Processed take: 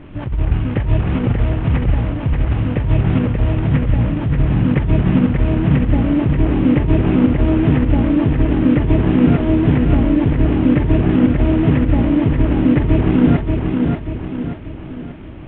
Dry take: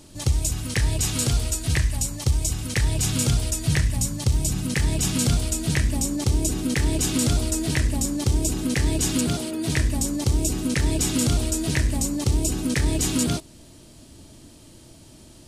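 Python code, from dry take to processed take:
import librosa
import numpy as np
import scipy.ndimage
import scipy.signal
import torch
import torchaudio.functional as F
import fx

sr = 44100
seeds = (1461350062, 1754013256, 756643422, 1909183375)

y = fx.cvsd(x, sr, bps=16000)
y = fx.tilt_shelf(y, sr, db=4.0, hz=780.0)
y = fx.over_compress(y, sr, threshold_db=-20.0, ratio=-0.5)
y = fx.echo_feedback(y, sr, ms=584, feedback_pct=46, wet_db=-4.0)
y = F.gain(torch.from_numpy(y), 7.0).numpy()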